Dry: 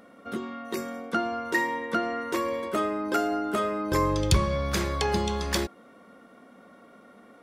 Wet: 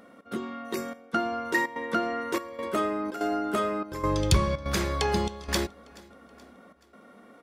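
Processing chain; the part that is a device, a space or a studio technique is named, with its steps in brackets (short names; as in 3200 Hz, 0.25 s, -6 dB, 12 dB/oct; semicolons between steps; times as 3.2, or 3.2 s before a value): trance gate with a delay (step gate "xx.xxxxxx..xxx" 145 bpm -12 dB; feedback echo 0.427 s, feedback 49%, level -24 dB)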